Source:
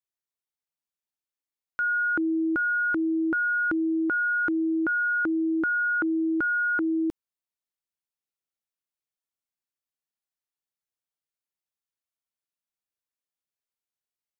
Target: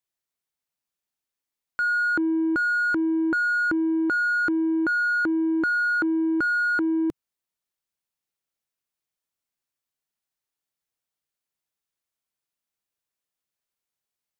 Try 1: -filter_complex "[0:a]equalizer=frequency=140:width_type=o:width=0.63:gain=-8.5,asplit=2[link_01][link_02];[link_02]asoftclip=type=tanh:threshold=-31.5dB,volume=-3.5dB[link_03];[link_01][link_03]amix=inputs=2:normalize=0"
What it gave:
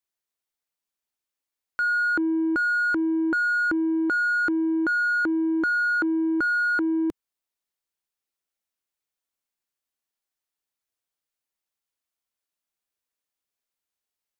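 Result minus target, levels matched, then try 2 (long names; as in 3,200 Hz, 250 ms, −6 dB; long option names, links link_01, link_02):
125 Hz band −4.5 dB
-filter_complex "[0:a]equalizer=frequency=140:width_type=o:width=0.63:gain=2,asplit=2[link_01][link_02];[link_02]asoftclip=type=tanh:threshold=-31.5dB,volume=-3.5dB[link_03];[link_01][link_03]amix=inputs=2:normalize=0"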